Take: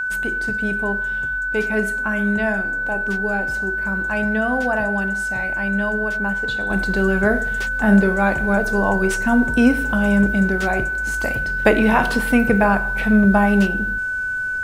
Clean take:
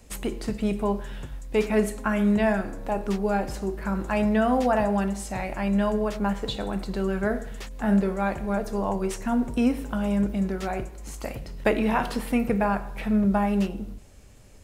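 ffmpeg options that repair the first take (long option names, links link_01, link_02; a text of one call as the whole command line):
ffmpeg -i in.wav -af "bandreject=frequency=1500:width=30,asetnsamples=nb_out_samples=441:pad=0,asendcmd='6.7 volume volume -7.5dB',volume=0dB" out.wav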